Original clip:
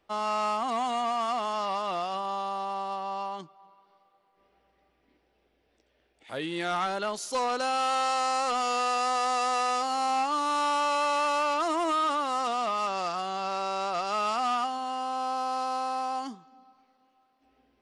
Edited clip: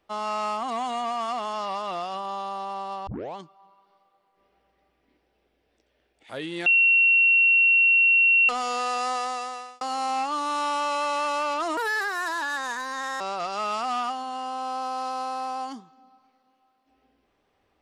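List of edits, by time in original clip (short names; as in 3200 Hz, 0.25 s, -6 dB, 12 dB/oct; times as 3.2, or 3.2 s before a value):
3.07 tape start 0.29 s
6.66–8.49 bleep 2730 Hz -15 dBFS
9.11–9.81 fade out
11.77–13.75 speed 138%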